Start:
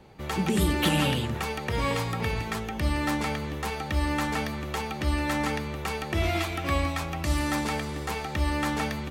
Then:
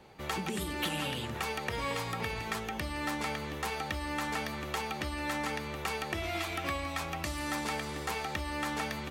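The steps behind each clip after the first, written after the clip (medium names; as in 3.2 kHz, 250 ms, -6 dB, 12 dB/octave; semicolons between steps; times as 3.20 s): compression, threshold -28 dBFS, peak gain reduction 9 dB; bass shelf 330 Hz -8 dB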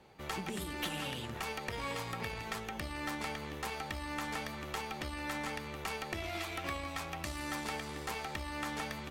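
valve stage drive 24 dB, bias 0.75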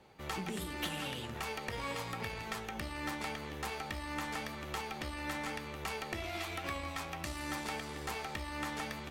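flange 0.9 Hz, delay 9.1 ms, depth 9.1 ms, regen +77%; trim +4 dB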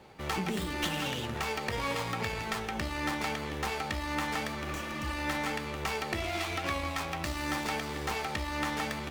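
spectral replace 4.68–5.10 s, 290–5500 Hz; sliding maximum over 3 samples; trim +7 dB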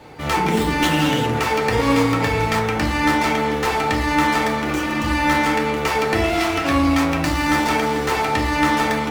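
FDN reverb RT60 0.77 s, low-frequency decay 1.1×, high-frequency decay 0.3×, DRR -2 dB; trim +9 dB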